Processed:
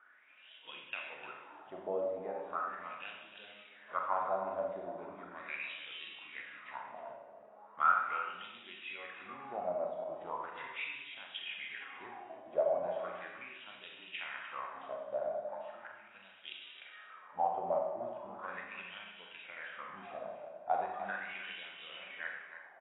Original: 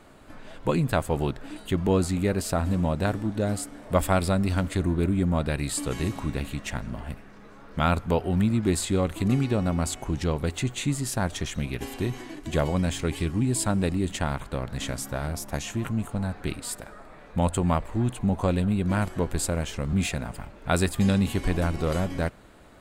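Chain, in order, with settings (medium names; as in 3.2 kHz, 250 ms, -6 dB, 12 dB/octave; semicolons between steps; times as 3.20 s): high-pass 370 Hz 6 dB/octave; low-pass that closes with the level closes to 2.8 kHz, closed at -25.5 dBFS; 15.35–16.15 s: compression 6:1, threshold -36 dBFS, peak gain reduction 9 dB; wah-wah 0.38 Hz 600–3200 Hz, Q 9.5; echo from a far wall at 52 m, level -10 dB; Schroeder reverb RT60 0.95 s, combs from 30 ms, DRR 0.5 dB; trim +3 dB; AAC 16 kbps 16 kHz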